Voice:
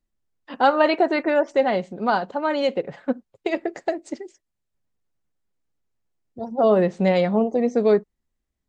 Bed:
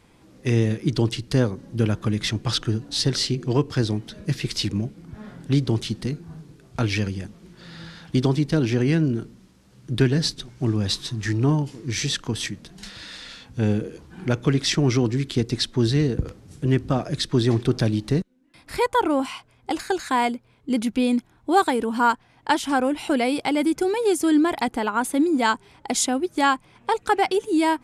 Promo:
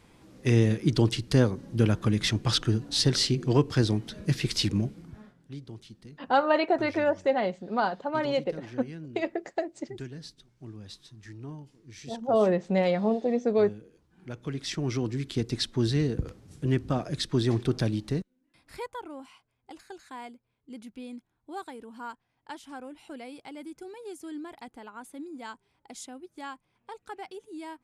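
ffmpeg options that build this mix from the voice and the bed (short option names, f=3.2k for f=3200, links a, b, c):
-filter_complex "[0:a]adelay=5700,volume=-5.5dB[a];[1:a]volume=14dB,afade=t=out:st=4.94:d=0.4:silence=0.105925,afade=t=in:st=14.14:d=1.43:silence=0.16788,afade=t=out:st=17.81:d=1.22:silence=0.177828[b];[a][b]amix=inputs=2:normalize=0"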